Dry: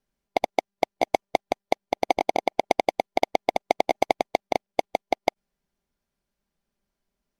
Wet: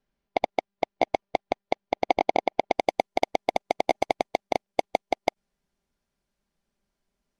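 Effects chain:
low-pass filter 4,400 Hz 12 dB per octave, from 0:02.75 11,000 Hz
boost into a limiter +7 dB
level −5.5 dB

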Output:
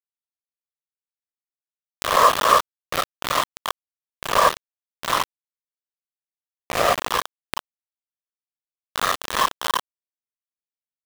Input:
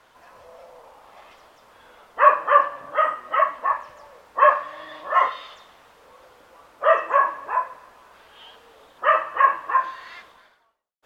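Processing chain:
peak hold with a rise ahead of every peak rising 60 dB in 1.14 s
linear-phase brick-wall high-pass 360 Hz
high-shelf EQ 2,400 Hz −10.5 dB
mains-hum notches 50/100/150/200/250/300/350/400/450/500 Hz
repeating echo 66 ms, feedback 41%, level −15 dB
random phases in short frames
0:07.09–0:09.15: parametric band 630 Hz −6.5 dB 0.68 octaves
centre clipping without the shift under −14 dBFS
background raised ahead of every attack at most 150 dB per second
level −2.5 dB

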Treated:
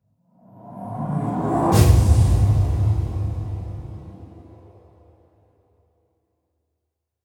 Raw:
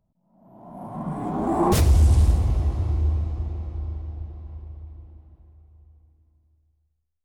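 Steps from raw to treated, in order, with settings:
high-pass filter sweep 100 Hz → 450 Hz, 0:03.68–0:04.72
coupled-rooms reverb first 0.51 s, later 4.1 s, from −22 dB, DRR −10 dB
level −7.5 dB

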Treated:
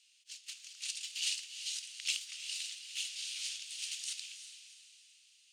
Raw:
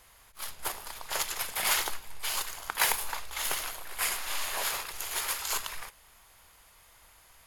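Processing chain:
elliptic band-pass filter 2,000–6,200 Hz, stop band 80 dB
on a send: feedback delay with all-pass diffusion 477 ms, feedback 43%, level −10 dB
on the sum: wrong playback speed 33 rpm record played at 45 rpm
level −3 dB

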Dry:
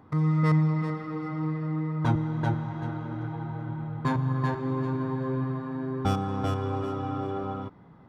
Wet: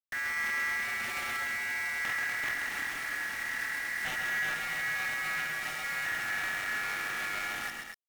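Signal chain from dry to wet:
lower of the sound and its delayed copy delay 1.9 ms
low-pass filter 4,000 Hz 6 dB per octave
sample-rate reduction 3,000 Hz, jitter 0%
low-shelf EQ 190 Hz +5 dB
hard clipping −28 dBFS, distortion −7 dB
ring modulation 1,800 Hz
bit reduction 7 bits
brickwall limiter −30.5 dBFS, peak gain reduction 4 dB
on a send: loudspeakers that aren't time-aligned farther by 46 metres −5 dB, 83 metres −7 dB
on the sum: highs frequency-modulated by the lows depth 0.15 ms
level +2.5 dB

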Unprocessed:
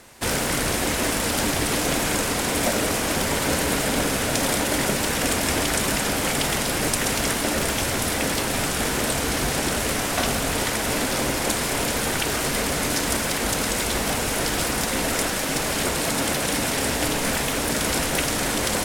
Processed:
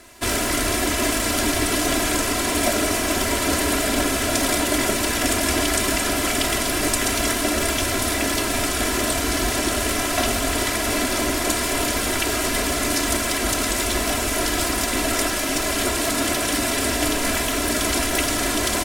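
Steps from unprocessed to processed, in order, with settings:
notch filter 890 Hz, Q 12
comb filter 3 ms, depth 73%

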